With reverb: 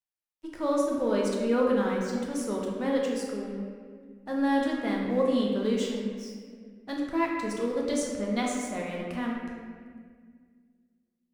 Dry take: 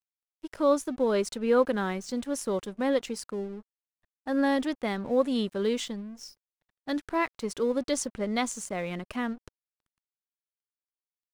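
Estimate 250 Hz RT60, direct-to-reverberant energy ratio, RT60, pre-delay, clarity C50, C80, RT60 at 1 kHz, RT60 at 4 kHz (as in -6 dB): 2.6 s, -2.5 dB, 1.9 s, 8 ms, 1.0 dB, 2.5 dB, 1.6 s, 1.2 s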